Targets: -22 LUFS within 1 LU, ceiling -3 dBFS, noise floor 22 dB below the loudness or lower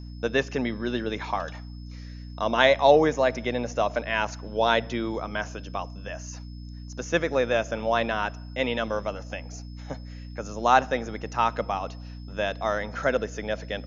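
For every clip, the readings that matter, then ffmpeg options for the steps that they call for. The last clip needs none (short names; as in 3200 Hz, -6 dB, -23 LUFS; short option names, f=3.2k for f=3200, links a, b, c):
hum 60 Hz; harmonics up to 300 Hz; hum level -37 dBFS; steady tone 5200 Hz; tone level -55 dBFS; loudness -26.0 LUFS; peak -4.0 dBFS; loudness target -22.0 LUFS
-> -af "bandreject=f=60:t=h:w=6,bandreject=f=120:t=h:w=6,bandreject=f=180:t=h:w=6,bandreject=f=240:t=h:w=6,bandreject=f=300:t=h:w=6"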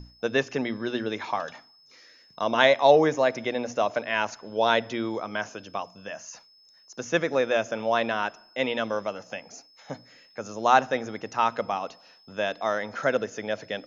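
hum none; steady tone 5200 Hz; tone level -55 dBFS
-> -af "bandreject=f=5.2k:w=30"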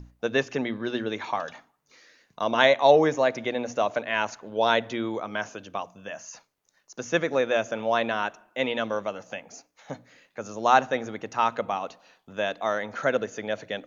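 steady tone none; loudness -26.0 LUFS; peak -4.0 dBFS; loudness target -22.0 LUFS
-> -af "volume=4dB,alimiter=limit=-3dB:level=0:latency=1"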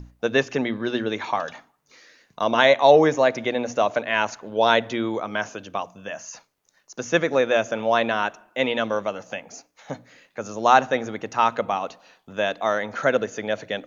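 loudness -22.5 LUFS; peak -3.0 dBFS; noise floor -66 dBFS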